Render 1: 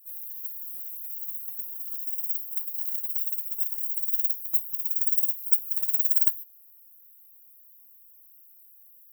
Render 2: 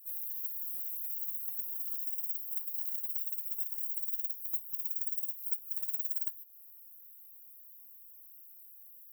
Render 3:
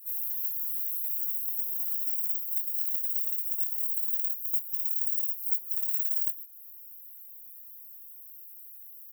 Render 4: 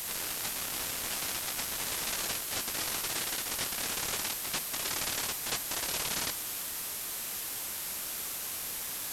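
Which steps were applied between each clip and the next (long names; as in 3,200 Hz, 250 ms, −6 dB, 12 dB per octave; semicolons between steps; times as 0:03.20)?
downward compressor 4 to 1, threshold −33 dBFS, peak gain reduction 15.5 dB
double-tracking delay 23 ms −4 dB; level +5 dB
linear delta modulator 64 kbit/s, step −26.5 dBFS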